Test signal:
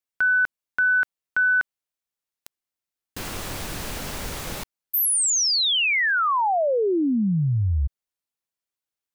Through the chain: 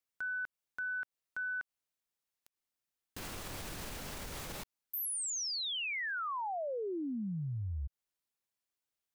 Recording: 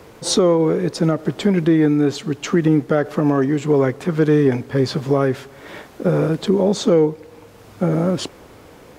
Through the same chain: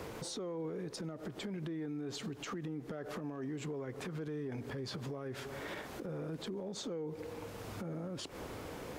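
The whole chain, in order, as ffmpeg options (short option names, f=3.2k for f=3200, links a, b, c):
-af "acompressor=threshold=-24dB:ratio=10:attack=0.1:release=269:knee=6:detection=peak,alimiter=level_in=8.5dB:limit=-24dB:level=0:latency=1:release=107,volume=-8.5dB,volume=-1.5dB"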